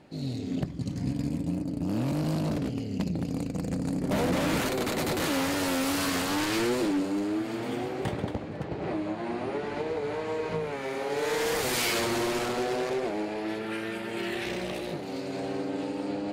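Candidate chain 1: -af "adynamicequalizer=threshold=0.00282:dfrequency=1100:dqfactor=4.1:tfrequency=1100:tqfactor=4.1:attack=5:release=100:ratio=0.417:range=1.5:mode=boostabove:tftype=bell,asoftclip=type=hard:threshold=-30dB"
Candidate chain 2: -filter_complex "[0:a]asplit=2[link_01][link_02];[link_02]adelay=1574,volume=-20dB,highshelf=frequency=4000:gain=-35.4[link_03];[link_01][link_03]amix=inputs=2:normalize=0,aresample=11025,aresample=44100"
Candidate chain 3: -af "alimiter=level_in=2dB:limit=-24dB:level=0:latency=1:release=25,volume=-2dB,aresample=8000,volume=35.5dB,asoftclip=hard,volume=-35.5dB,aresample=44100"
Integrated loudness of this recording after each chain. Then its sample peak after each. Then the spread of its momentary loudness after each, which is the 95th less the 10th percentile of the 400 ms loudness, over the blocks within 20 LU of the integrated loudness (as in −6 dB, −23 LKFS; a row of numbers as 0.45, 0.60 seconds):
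−33.5, −30.5, −38.0 LKFS; −30.0, −18.0, −30.5 dBFS; 3, 6, 2 LU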